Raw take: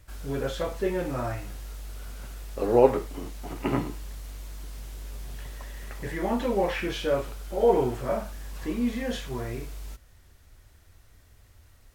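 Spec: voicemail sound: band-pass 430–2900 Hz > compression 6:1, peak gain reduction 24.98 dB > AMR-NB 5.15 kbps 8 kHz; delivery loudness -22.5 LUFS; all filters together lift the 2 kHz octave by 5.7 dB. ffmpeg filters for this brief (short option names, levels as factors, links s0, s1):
-af "highpass=430,lowpass=2900,equalizer=f=2000:t=o:g=8,acompressor=threshold=0.00891:ratio=6,volume=18.8" -ar 8000 -c:a libopencore_amrnb -b:a 5150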